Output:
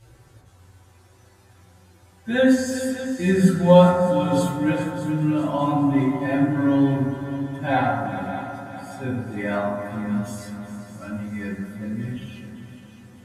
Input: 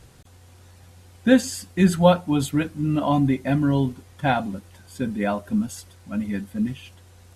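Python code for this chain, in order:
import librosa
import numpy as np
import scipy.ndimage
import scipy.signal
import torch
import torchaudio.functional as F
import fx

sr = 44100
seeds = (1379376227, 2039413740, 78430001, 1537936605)

p1 = fx.hum_notches(x, sr, base_hz=50, count=2)
p2 = fx.stretch_vocoder(p1, sr, factor=1.8)
p3 = p2 + fx.echo_heads(p2, sr, ms=202, heads='second and third', feedback_pct=50, wet_db=-12, dry=0)
p4 = fx.rev_fdn(p3, sr, rt60_s=1.4, lf_ratio=0.8, hf_ratio=0.3, size_ms=53.0, drr_db=-5.5)
y = p4 * librosa.db_to_amplitude(-6.5)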